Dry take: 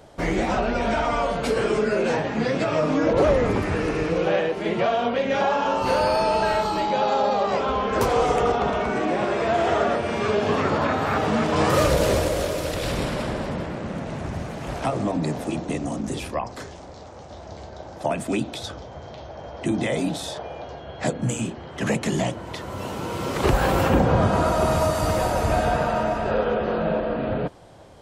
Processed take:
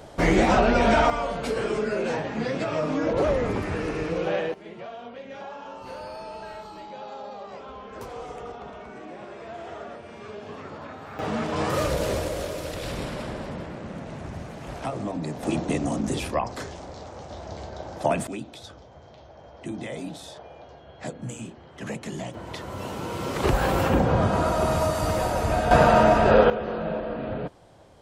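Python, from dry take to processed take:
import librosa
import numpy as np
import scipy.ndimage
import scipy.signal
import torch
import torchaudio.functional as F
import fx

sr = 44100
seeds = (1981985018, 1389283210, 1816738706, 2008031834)

y = fx.gain(x, sr, db=fx.steps((0.0, 4.0), (1.1, -4.5), (4.54, -17.0), (11.19, -6.0), (15.43, 1.5), (18.27, -10.0), (22.34, -2.5), (25.71, 6.5), (26.5, -5.5)))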